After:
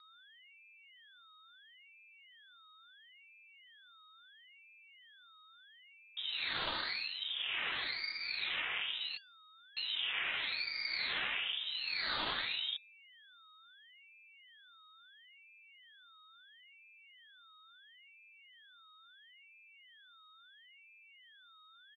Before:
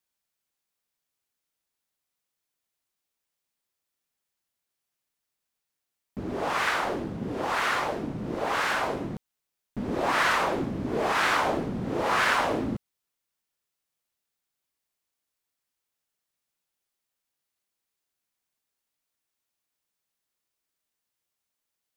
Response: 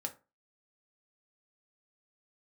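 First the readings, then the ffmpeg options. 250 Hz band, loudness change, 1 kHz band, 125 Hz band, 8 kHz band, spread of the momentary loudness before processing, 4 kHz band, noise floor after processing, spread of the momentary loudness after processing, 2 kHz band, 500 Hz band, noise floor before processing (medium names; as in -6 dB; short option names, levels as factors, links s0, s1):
-26.5 dB, -9.0 dB, -19.5 dB, -25.0 dB, under -35 dB, 13 LU, +1.5 dB, -62 dBFS, 5 LU, -9.0 dB, -24.0 dB, -85 dBFS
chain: -af "aecho=1:1:3.2:0.43,acompressor=threshold=0.0447:ratio=4,aeval=exprs='val(0)+0.00282*sin(2*PI*1200*n/s)':c=same,lowpass=f=3100:t=q:w=0.5098,lowpass=f=3100:t=q:w=0.6013,lowpass=f=3100:t=q:w=0.9,lowpass=f=3100:t=q:w=2.563,afreqshift=-3700,aeval=exprs='val(0)*sin(2*PI*670*n/s+670*0.85/0.74*sin(2*PI*0.74*n/s))':c=same,volume=0.596"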